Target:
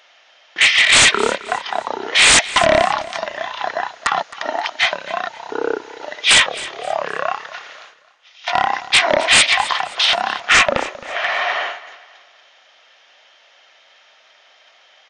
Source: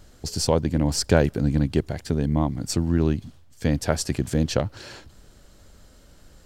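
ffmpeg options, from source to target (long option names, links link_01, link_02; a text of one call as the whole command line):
ffmpeg -i in.wav -filter_complex "[0:a]agate=range=-14dB:threshold=-44dB:ratio=16:detection=peak,highpass=frequency=1400:width=0.5412,highpass=frequency=1400:width=1.3066,equalizer=frequency=7700:width=1.5:gain=2,aeval=exprs='0.237*sin(PI/2*4.47*val(0)/0.237)':channel_layout=same,asplit=2[link_01][link_02];[link_02]aecho=0:1:113|226|339:0.133|0.0467|0.0163[link_03];[link_01][link_03]amix=inputs=2:normalize=0,asetrate=18846,aresample=44100,volume=6dB" out.wav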